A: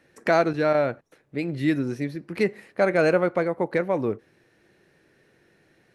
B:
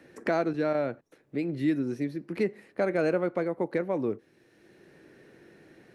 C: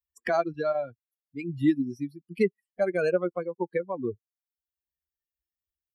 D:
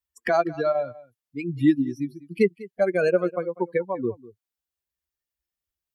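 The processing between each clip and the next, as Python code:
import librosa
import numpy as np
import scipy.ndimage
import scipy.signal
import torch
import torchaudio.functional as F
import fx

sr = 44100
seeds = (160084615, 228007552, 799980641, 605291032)

y1 = fx.peak_eq(x, sr, hz=300.0, db=6.0, octaves=1.5)
y1 = fx.band_squash(y1, sr, depth_pct=40)
y1 = F.gain(torch.from_numpy(y1), -8.5).numpy()
y2 = fx.bin_expand(y1, sr, power=3.0)
y2 = F.gain(torch.from_numpy(y2), 6.5).numpy()
y3 = fx.wow_flutter(y2, sr, seeds[0], rate_hz=2.1, depth_cents=16.0)
y3 = y3 + 10.0 ** (-19.5 / 20.0) * np.pad(y3, (int(198 * sr / 1000.0), 0))[:len(y3)]
y3 = F.gain(torch.from_numpy(y3), 4.0).numpy()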